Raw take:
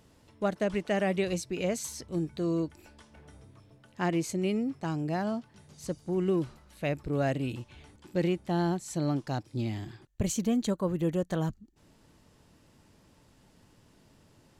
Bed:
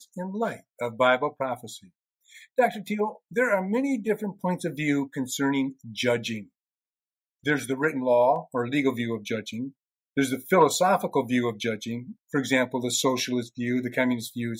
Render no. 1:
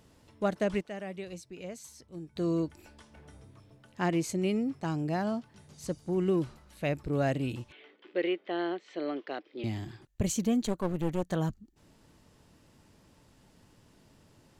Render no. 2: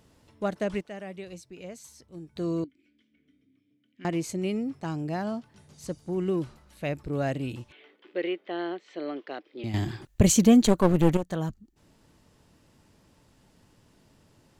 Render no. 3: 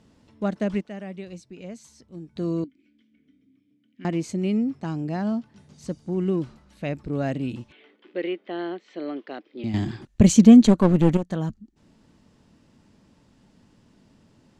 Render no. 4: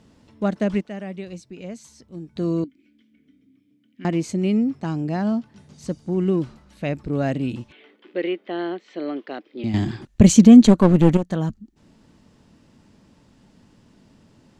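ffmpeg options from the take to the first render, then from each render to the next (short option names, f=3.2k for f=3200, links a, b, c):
-filter_complex "[0:a]asettb=1/sr,asplit=3[a][b][c];[a]atrim=end=7.724[d];[b]atrim=start=7.72:end=9.64,asetpts=PTS-STARTPTS,afade=t=in:d=0.004:c=qsin,afade=t=out:st=1.916:d=0.004:c=qsin,highpass=f=330:w=0.5412,highpass=f=330:w=1.3066,equalizer=f=430:t=q:w=4:g=5,equalizer=f=880:t=q:w=4:g=-8,equalizer=f=2k:t=q:w=4:g=6,equalizer=f=3.1k:t=q:w=4:g=5,lowpass=f=3.5k:w=0.5412,lowpass=f=3.5k:w=1.3066[e];[c]atrim=start=9.636[f];[d][e]acrossfade=d=0.004:c1=hsin:c2=qsin[g];[g][f]acrossfade=d=0.004:c1=qsin:c2=hsin,asettb=1/sr,asplit=3[h][i][j];[h]atrim=end=10.654[k];[i]atrim=start=10.65:end=11.23,asetpts=PTS-STARTPTS,afade=t=in:d=0.004:c=qsin,afade=t=out:st=0.576:d=0.004:c=qsin,aeval=exprs='clip(val(0),-1,0.0106)':c=same[l];[j]atrim=start=11.226[m];[k][l]acrossfade=d=0.004:c1=hsin:c2=qsin[n];[n][m]acrossfade=d=0.004:c1=qsin:c2=hsin,asplit=3[o][p][q];[o]atrim=end=0.812[r];[p]atrim=start=0.808:end=2.362,asetpts=PTS-STARTPTS,volume=-11.5dB[s];[q]atrim=start=2.358[t];[r][s]acrossfade=d=0.004:c1=hsin:c2=hsin[u];[u][t]acrossfade=d=0.004:c1=hsin:c2=hsin"
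-filter_complex "[0:a]asettb=1/sr,asplit=3[a][b][c];[a]atrim=end=2.644[d];[b]atrim=start=2.64:end=4.05,asetpts=PTS-STARTPTS,afade=t=in:d=0.004:c=qsin,afade=t=out:st=1.406:d=0.004:c=qsin,asplit=3[e][f][g];[e]bandpass=f=270:t=q:w=8,volume=0dB[h];[f]bandpass=f=2.29k:t=q:w=8,volume=-6dB[i];[g]bandpass=f=3.01k:t=q:w=8,volume=-9dB[j];[h][i][j]amix=inputs=3:normalize=0[k];[c]atrim=start=4.046[l];[d][k]acrossfade=d=0.004:c1=hsin:c2=qsin[m];[m][l]acrossfade=d=0.004:c1=qsin:c2=hsin,asplit=3[n][o][p];[n]atrim=end=9.742[q];[o]atrim=start=9.738:end=11.172,asetpts=PTS-STARTPTS,volume=10.5dB[r];[p]atrim=start=11.168[s];[q][r]acrossfade=d=0.004:c1=hsin:c2=hsin[t];[t][s]acrossfade=d=0.004:c1=hsin:c2=hsin"
-af "lowpass=7.5k,equalizer=f=220:w=1.8:g=8"
-af "volume=3.5dB,alimiter=limit=-1dB:level=0:latency=1"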